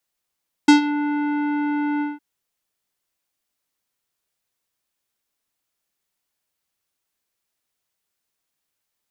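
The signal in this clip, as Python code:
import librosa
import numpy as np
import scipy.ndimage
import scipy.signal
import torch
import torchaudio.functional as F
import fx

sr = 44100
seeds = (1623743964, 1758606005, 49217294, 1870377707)

y = fx.sub_voice(sr, note=62, wave='square', cutoff_hz=2200.0, q=0.71, env_oct=2.0, env_s=0.25, attack_ms=7.1, decay_s=0.12, sustain_db=-14, release_s=0.18, note_s=1.33, slope=24)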